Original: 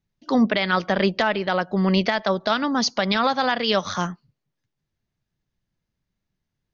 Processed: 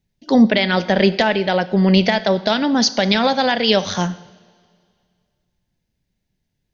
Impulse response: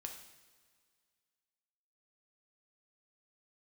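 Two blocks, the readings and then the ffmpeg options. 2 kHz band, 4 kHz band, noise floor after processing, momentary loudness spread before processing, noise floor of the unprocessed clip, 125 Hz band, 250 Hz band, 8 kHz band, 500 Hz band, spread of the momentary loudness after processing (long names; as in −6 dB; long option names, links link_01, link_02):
+3.5 dB, +6.0 dB, −74 dBFS, 4 LU, −81 dBFS, +6.5 dB, +6.5 dB, can't be measured, +6.0 dB, 4 LU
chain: -filter_complex "[0:a]equalizer=frequency=1200:width_type=o:width=0.49:gain=-12.5,asplit=2[link_01][link_02];[1:a]atrim=start_sample=2205[link_03];[link_02][link_03]afir=irnorm=-1:irlink=0,volume=-2dB[link_04];[link_01][link_04]amix=inputs=2:normalize=0,volume=3dB"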